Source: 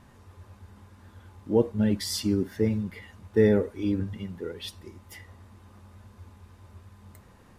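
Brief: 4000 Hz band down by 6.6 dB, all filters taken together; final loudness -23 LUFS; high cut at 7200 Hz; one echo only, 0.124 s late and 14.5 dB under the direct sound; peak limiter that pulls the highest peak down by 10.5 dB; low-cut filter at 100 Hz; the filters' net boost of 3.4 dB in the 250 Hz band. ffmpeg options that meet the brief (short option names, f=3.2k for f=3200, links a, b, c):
-af "highpass=100,lowpass=7.2k,equalizer=f=250:t=o:g=4.5,equalizer=f=4k:t=o:g=-8,alimiter=limit=-18dB:level=0:latency=1,aecho=1:1:124:0.188,volume=7dB"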